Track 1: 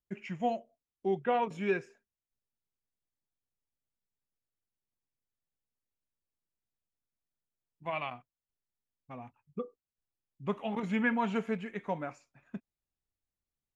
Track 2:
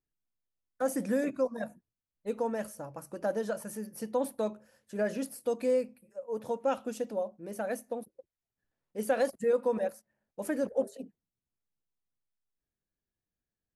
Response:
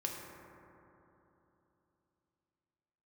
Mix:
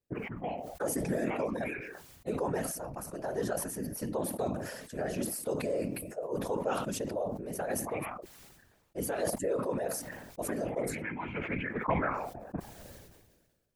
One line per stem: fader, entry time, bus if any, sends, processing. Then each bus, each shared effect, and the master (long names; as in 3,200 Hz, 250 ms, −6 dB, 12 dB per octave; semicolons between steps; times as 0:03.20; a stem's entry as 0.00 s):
+2.0 dB, 0.00 s, no send, envelope-controlled low-pass 530–2,300 Hz up, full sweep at −30 dBFS; automatic ducking −17 dB, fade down 0.85 s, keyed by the second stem
+0.5 dB, 0.00 s, no send, low-shelf EQ 95 Hz −7 dB; brickwall limiter −26.5 dBFS, peak gain reduction 9 dB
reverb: not used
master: random phases in short frames; level that may fall only so fast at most 42 dB per second